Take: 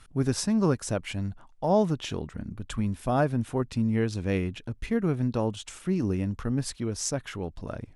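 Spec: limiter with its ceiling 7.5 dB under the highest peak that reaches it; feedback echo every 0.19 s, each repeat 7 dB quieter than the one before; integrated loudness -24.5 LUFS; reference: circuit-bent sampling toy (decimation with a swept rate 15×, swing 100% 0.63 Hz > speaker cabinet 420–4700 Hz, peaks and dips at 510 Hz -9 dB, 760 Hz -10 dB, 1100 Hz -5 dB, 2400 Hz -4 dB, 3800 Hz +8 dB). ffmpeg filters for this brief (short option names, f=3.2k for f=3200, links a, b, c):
-af "alimiter=limit=-19.5dB:level=0:latency=1,aecho=1:1:190|380|570|760|950:0.447|0.201|0.0905|0.0407|0.0183,acrusher=samples=15:mix=1:aa=0.000001:lfo=1:lforange=15:lforate=0.63,highpass=420,equalizer=f=510:t=q:w=4:g=-9,equalizer=f=760:t=q:w=4:g=-10,equalizer=f=1.1k:t=q:w=4:g=-5,equalizer=f=2.4k:t=q:w=4:g=-4,equalizer=f=3.8k:t=q:w=4:g=8,lowpass=f=4.7k:w=0.5412,lowpass=f=4.7k:w=1.3066,volume=13dB"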